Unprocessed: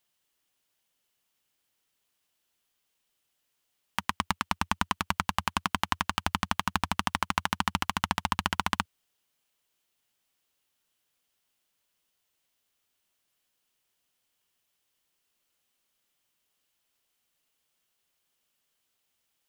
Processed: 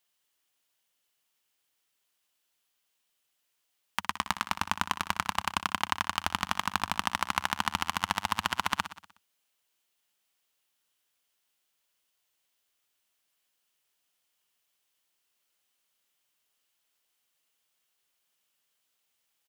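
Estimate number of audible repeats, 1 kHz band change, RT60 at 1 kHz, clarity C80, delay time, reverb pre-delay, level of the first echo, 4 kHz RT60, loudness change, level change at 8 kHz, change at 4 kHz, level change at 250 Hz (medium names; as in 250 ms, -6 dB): 5, -0.5 dB, no reverb, no reverb, 61 ms, no reverb, -13.0 dB, no reverb, -0.5 dB, +0.5 dB, 0.0 dB, -5.5 dB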